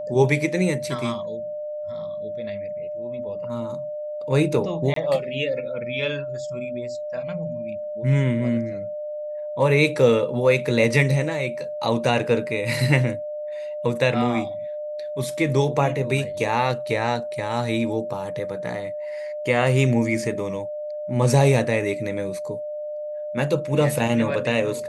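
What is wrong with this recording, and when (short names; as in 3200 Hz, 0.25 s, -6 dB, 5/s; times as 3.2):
tone 600 Hz -28 dBFS
4.94–4.96 gap 23 ms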